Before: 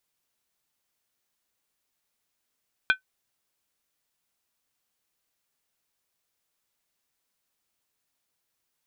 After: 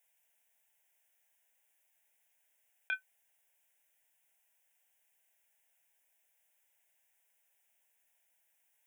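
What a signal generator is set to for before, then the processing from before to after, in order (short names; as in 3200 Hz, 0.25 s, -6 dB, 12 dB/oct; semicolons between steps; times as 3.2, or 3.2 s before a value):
skin hit, lowest mode 1520 Hz, decay 0.11 s, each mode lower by 5.5 dB, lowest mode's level -13 dB
negative-ratio compressor -29 dBFS, ratio -1; HPF 650 Hz 6 dB/oct; fixed phaser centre 1200 Hz, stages 6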